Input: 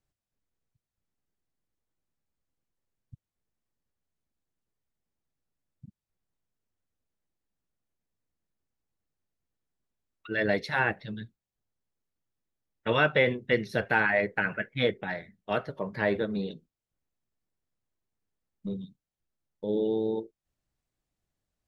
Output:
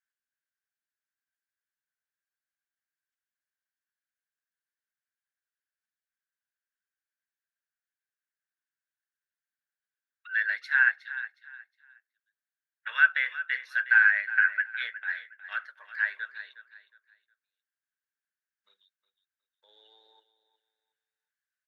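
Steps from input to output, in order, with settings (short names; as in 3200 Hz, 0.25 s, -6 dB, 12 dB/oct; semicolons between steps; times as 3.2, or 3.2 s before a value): ladder high-pass 1500 Hz, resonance 80%; on a send: feedback echo 0.363 s, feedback 27%, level -14 dB; on the sum: gain +4.5 dB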